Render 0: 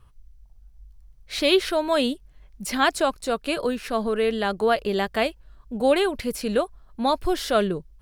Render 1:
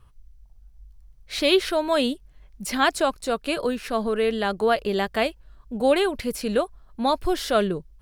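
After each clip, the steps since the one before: no audible change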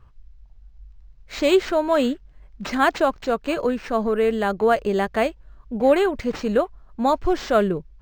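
peaking EQ 3.5 kHz -7 dB 1 oct; decimation joined by straight lines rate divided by 4×; trim +3 dB

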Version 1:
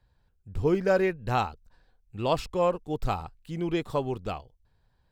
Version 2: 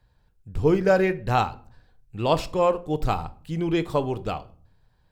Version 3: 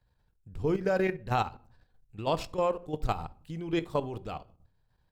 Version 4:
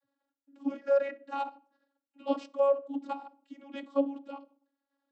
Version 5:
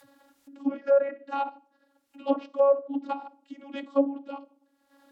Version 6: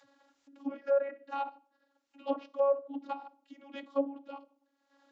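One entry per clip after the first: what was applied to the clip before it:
simulated room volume 520 m³, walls furnished, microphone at 0.46 m; trim +4 dB
level held to a coarse grid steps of 11 dB; trim -3.5 dB
vocoder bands 32, saw 278 Hz
low-pass that closes with the level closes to 1.5 kHz, closed at -25.5 dBFS; upward compressor, threshold -47 dBFS; trim +4.5 dB
bass shelf 230 Hz -10 dB; resampled via 16 kHz; trim -5 dB

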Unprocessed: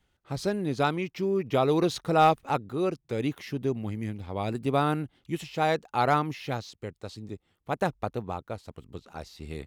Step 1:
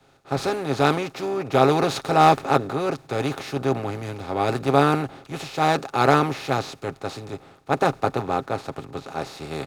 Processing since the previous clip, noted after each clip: spectral levelling over time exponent 0.4; comb 7.4 ms, depth 42%; three bands expanded up and down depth 100%; trim -1 dB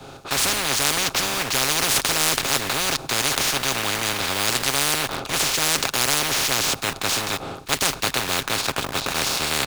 peaking EQ 1.9 kHz -8 dB 0.36 oct; in parallel at -6 dB: bit crusher 6-bit; on the sum: spectrum-flattening compressor 10:1; trim -3 dB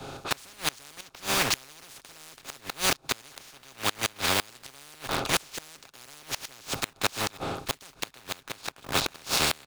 inverted gate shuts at -10 dBFS, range -28 dB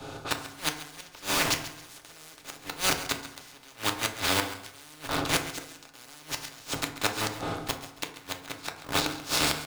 flange 0.22 Hz, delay 9.8 ms, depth 4.3 ms, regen +89%; feedback delay 137 ms, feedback 29%, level -14 dB; FDN reverb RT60 0.67 s, low-frequency decay 1.1×, high-frequency decay 0.45×, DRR 4.5 dB; trim +3 dB

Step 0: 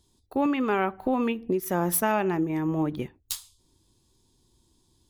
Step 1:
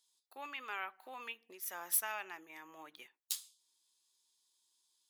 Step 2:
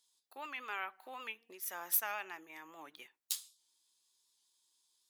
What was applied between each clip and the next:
Bessel high-pass 2 kHz, order 2; trim -5.5 dB
warped record 78 rpm, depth 100 cents; trim +1 dB

